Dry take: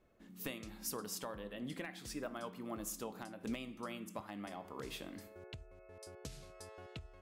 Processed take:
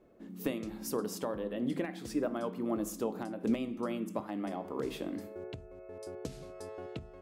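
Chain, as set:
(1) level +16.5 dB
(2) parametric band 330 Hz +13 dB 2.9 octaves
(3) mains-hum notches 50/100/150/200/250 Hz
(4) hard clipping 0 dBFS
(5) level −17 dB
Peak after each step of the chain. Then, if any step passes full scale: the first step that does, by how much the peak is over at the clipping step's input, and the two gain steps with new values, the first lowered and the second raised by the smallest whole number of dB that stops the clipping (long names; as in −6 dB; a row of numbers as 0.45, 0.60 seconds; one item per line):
−12.0, −2.0, −2.5, −2.5, −19.5 dBFS
no step passes full scale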